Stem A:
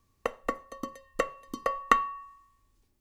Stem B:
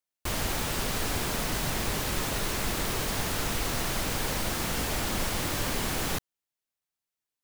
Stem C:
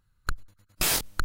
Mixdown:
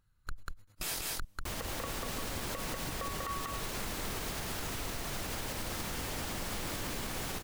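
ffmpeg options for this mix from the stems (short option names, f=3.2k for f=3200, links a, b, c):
-filter_complex "[0:a]adelay=1350,volume=-4.5dB,asplit=2[a][b];[b]volume=-3.5dB[c];[1:a]adelay=1200,volume=-6dB,asplit=2[d][e];[e]volume=-5.5dB[f];[2:a]volume=-3.5dB,asplit=2[g][h];[h]volume=-7.5dB[i];[c][f][i]amix=inputs=3:normalize=0,aecho=0:1:192:1[j];[a][d][g][j]amix=inputs=4:normalize=0,alimiter=level_in=3.5dB:limit=-24dB:level=0:latency=1:release=93,volume=-3.5dB"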